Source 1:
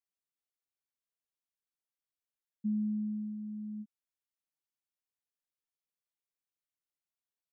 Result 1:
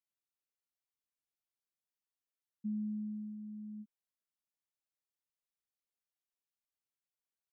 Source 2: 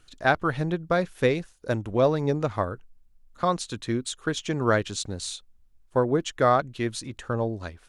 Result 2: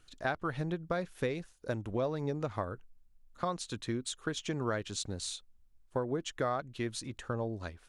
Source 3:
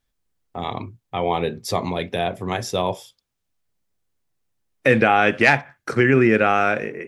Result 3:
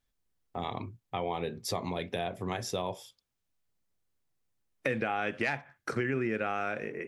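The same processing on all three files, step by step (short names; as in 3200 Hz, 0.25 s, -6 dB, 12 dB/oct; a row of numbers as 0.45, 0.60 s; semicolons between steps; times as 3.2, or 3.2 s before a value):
compressor 3:1, threshold -26 dBFS; gain -5 dB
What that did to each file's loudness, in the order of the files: -5.0, -10.0, -14.0 LU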